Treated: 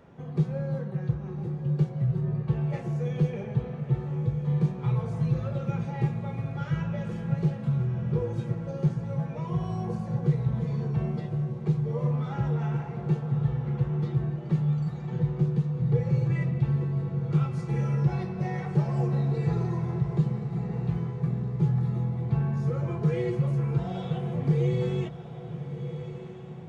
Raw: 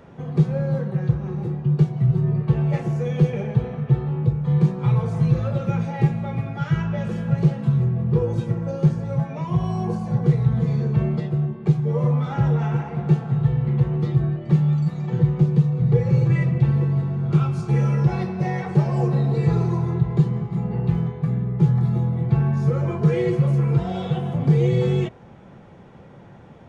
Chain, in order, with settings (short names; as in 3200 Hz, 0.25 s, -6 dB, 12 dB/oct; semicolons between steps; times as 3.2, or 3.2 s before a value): on a send: diffused feedback echo 1.286 s, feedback 53%, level -11 dB; on the sum: gain -7.5 dB